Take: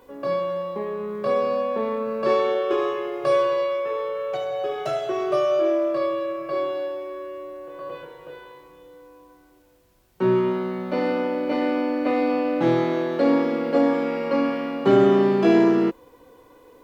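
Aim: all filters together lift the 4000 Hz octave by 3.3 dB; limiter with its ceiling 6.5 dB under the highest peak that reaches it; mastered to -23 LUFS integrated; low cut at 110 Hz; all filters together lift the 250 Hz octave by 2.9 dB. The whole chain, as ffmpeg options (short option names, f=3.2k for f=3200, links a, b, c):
-af "highpass=110,equalizer=f=250:t=o:g=4,equalizer=f=4k:t=o:g=4.5,volume=-1dB,alimiter=limit=-11dB:level=0:latency=1"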